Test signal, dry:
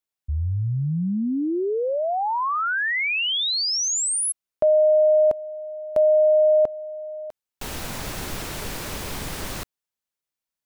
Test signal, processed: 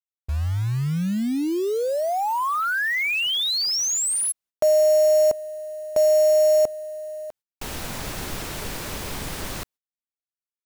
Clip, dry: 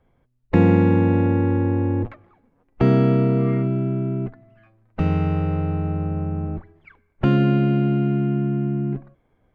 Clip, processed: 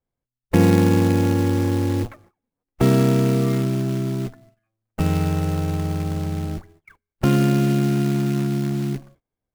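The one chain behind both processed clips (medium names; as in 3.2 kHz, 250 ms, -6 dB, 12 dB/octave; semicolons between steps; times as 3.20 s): short-mantissa float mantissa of 2-bit; gate -49 dBFS, range -22 dB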